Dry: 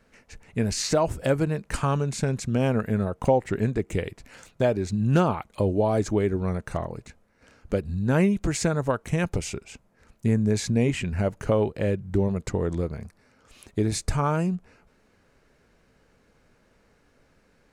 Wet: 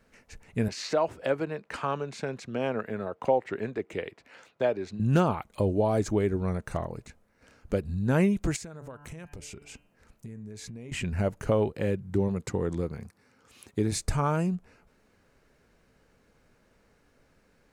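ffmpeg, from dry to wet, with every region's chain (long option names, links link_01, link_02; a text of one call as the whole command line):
ffmpeg -i in.wav -filter_complex "[0:a]asettb=1/sr,asplit=3[link_01][link_02][link_03];[link_01]atrim=end=0.684[link_04];[link_02]atrim=start=0.68:end=5,asetpts=PTS-STARTPTS,afade=type=in:duration=0.004:curve=qsin,afade=type=out:start_time=4.316:duration=0.004:curve=qsin,highpass=94,acrossover=split=310 4700:gain=0.251 1 0.141[link_05][link_06][link_07];[link_05][link_06][link_07]amix=inputs=3:normalize=0[link_08];[link_03]atrim=start=4.996[link_09];[link_04][link_08]acrossfade=duration=0.004:curve1=hsin:curve2=qsin[link_10];[link_10][link_09]acrossfade=duration=0.004:curve1=qsin:curve2=hsin,asettb=1/sr,asplit=3[link_11][link_12][link_13];[link_11]atrim=end=8.564[link_14];[link_12]atrim=start=8.56:end=10.92,asetpts=PTS-STARTPTS,afade=type=in:duration=0.004:curve=qsin,afade=type=out:start_time=2.356:duration=0.004:curve=qsin,bandreject=frequency=145.7:width_type=h:width=4,bandreject=frequency=291.4:width_type=h:width=4,bandreject=frequency=437.1:width_type=h:width=4,bandreject=frequency=582.8:width_type=h:width=4,bandreject=frequency=728.5:width_type=h:width=4,bandreject=frequency=874.2:width_type=h:width=4,bandreject=frequency=1019.9:width_type=h:width=4,bandreject=frequency=1165.6:width_type=h:width=4,bandreject=frequency=1311.3:width_type=h:width=4,bandreject=frequency=1457:width_type=h:width=4,bandreject=frequency=1602.7:width_type=h:width=4,bandreject=frequency=1748.4:width_type=h:width=4,bandreject=frequency=1894.1:width_type=h:width=4,bandreject=frequency=2039.8:width_type=h:width=4,bandreject=frequency=2185.5:width_type=h:width=4,bandreject=frequency=2331.2:width_type=h:width=4,bandreject=frequency=2476.9:width_type=h:width=4,bandreject=frequency=2622.6:width_type=h:width=4,bandreject=frequency=2768.3:width_type=h:width=4,bandreject=frequency=2914:width_type=h:width=4,bandreject=frequency=3059.7:width_type=h:width=4,acompressor=threshold=-37dB:ratio=6:attack=3.2:release=140:knee=1:detection=peak[link_15];[link_13]atrim=start=10.916[link_16];[link_14][link_15]acrossfade=duration=0.004:curve1=hsin:curve2=qsin[link_17];[link_17][link_16]acrossfade=duration=0.004:curve1=qsin:curve2=hsin,asettb=1/sr,asplit=3[link_18][link_19][link_20];[link_18]atrim=end=11.754[link_21];[link_19]atrim=start=11.75:end=13.92,asetpts=PTS-STARTPTS,afade=type=in:duration=0.004:curve=qsin,afade=type=out:start_time=2.166:duration=0.004:curve=qsin,highpass=87,bandreject=frequency=630:width=7.3[link_22];[link_20]atrim=start=13.916[link_23];[link_21][link_22]acrossfade=duration=0.004:curve1=hsin:curve2=qsin[link_24];[link_24][link_23]acrossfade=duration=0.004:curve1=qsin:curve2=hsin,lowpass=frequency=2000:poles=1,aemphasis=mode=production:type=75fm,volume=-1.5dB" out.wav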